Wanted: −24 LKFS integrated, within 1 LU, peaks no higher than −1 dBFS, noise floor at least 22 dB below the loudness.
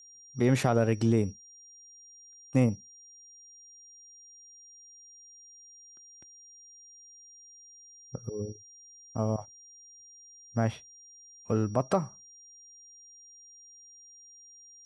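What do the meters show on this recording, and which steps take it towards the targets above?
interfering tone 5,700 Hz; level of the tone −51 dBFS; integrated loudness −29.5 LKFS; sample peak −12.5 dBFS; target loudness −24.0 LKFS
→ notch filter 5,700 Hz, Q 30
level +5.5 dB

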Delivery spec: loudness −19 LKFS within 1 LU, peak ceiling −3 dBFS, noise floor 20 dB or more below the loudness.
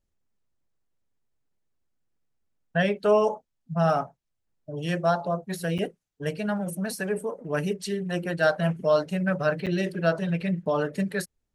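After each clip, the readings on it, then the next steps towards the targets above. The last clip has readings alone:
number of dropouts 2; longest dropout 7.1 ms; integrated loudness −27.0 LKFS; sample peak −10.0 dBFS; target loudness −19.0 LKFS
→ repair the gap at 0:05.78/0:09.66, 7.1 ms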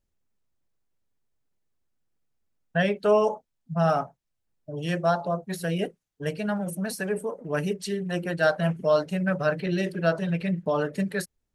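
number of dropouts 0; integrated loudness −27.0 LKFS; sample peak −10.0 dBFS; target loudness −19.0 LKFS
→ level +8 dB
brickwall limiter −3 dBFS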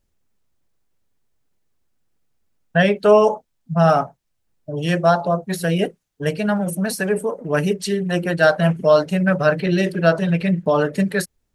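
integrated loudness −19.0 LKFS; sample peak −3.0 dBFS; background noise floor −72 dBFS

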